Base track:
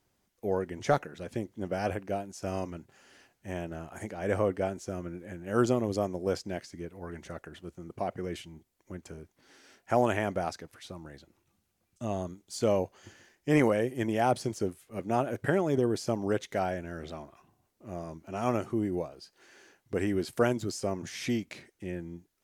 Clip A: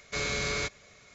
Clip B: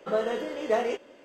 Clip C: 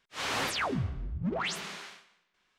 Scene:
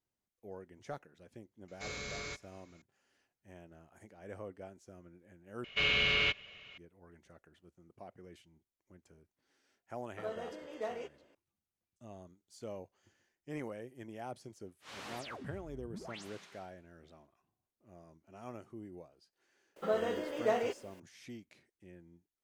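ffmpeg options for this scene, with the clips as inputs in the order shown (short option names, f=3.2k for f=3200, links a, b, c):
-filter_complex "[1:a]asplit=2[a][b];[2:a]asplit=2[c][d];[0:a]volume=-18dB[e];[b]lowpass=f=2.9k:t=q:w=14[f];[d]acrusher=bits=9:mix=0:aa=0.000001[g];[e]asplit=2[h][i];[h]atrim=end=5.644[j];[f]atrim=end=1.14,asetpts=PTS-STARTPTS,volume=-4.5dB[k];[i]atrim=start=6.776[l];[a]atrim=end=1.14,asetpts=PTS-STARTPTS,volume=-11.5dB,afade=t=in:d=0.004:c=hsin,afade=t=out:st=1.136:d=0.004:c=hsin,adelay=1680[m];[c]atrim=end=1.24,asetpts=PTS-STARTPTS,volume=-14dB,afade=t=in:d=0.004:c=hsin,afade=t=out:st=1.236:d=0.004:c=hsin,adelay=10110[n];[3:a]atrim=end=2.58,asetpts=PTS-STARTPTS,volume=-15.5dB,afade=t=in:d=0.004:c=hsin,afade=t=out:st=2.576:d=0.004:c=hsin,adelay=14690[o];[g]atrim=end=1.24,asetpts=PTS-STARTPTS,volume=-5.5dB,afade=t=in:d=0.004:c=hsin,afade=t=out:st=1.236:d=0.004:c=hsin,adelay=19760[p];[j][k]acrossfade=d=0.004:c1=hsin:c2=hsin[q];[q][l]acrossfade=d=0.004:c1=hsin:c2=hsin[r];[r][m][n][o][p]amix=inputs=5:normalize=0"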